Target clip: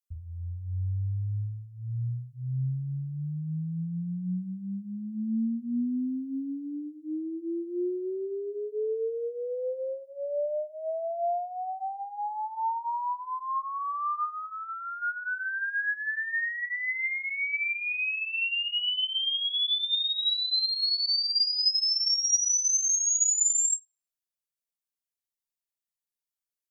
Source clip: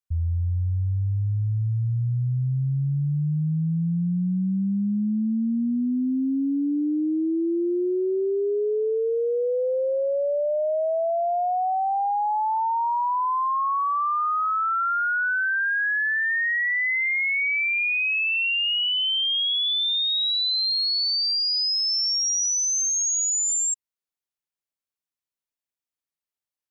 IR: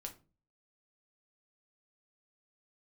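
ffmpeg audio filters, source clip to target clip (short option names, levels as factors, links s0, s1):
-filter_complex "[0:a]highshelf=f=3800:g=11[s0];[1:a]atrim=start_sample=2205,asetrate=52920,aresample=44100[s1];[s0][s1]afir=irnorm=-1:irlink=0,asettb=1/sr,asplit=3[s2][s3][s4];[s2]atrim=end=14.334[s5];[s3]atrim=start=14.33:end=15.02,asetpts=PTS-STARTPTS,afade=t=in:d=0.004:c=qsin,afade=t=out:st=0.686:d=0.004:c=qsin,acompressor=threshold=0.0282:ratio=6[s6];[s4]atrim=start=15.016[s7];[s5][s6]acrossfade=d=0.004:c1=hsin:c2=qsin[s8];[s8][s7]acrossfade=d=0.004:c1=qsin:c2=hsin,volume=0.631"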